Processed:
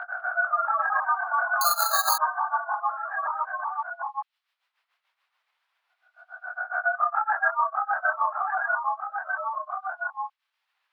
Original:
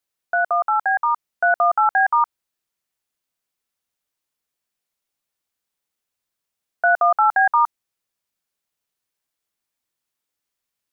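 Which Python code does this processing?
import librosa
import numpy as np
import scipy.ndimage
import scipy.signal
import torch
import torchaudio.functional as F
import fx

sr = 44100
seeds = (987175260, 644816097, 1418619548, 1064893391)

p1 = fx.spec_swells(x, sr, rise_s=0.8)
p2 = scipy.signal.sosfilt(scipy.signal.butter(4, 890.0, 'highpass', fs=sr, output='sos'), p1)
p3 = fx.level_steps(p2, sr, step_db=23)
p4 = p2 + (p3 * librosa.db_to_amplitude(0.5))
p5 = fx.vibrato(p4, sr, rate_hz=10.0, depth_cents=9.9)
p6 = fx.chorus_voices(p5, sr, voices=4, hz=0.47, base_ms=23, depth_ms=4.9, mix_pct=60)
p7 = p6 * (1.0 - 0.96 / 2.0 + 0.96 / 2.0 * np.cos(2.0 * np.pi * 7.1 * (np.arange(len(p6)) / sr)))
p8 = p7 + fx.echo_single(p7, sr, ms=1179, db=-10.5, dry=0)
p9 = fx.echo_pitch(p8, sr, ms=177, semitones=-1, count=2, db_per_echo=-3.0)
p10 = fx.air_absorb(p9, sr, metres=390.0)
p11 = fx.resample_bad(p10, sr, factor=8, down='filtered', up='zero_stuff', at=(1.61, 2.18))
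p12 = fx.band_squash(p11, sr, depth_pct=70)
y = p12 * librosa.db_to_amplitude(-2.5)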